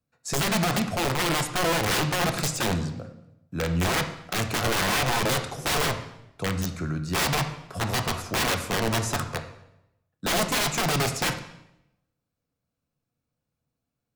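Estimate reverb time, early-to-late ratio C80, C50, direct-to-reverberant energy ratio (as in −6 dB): 0.85 s, 12.5 dB, 9.5 dB, 6.0 dB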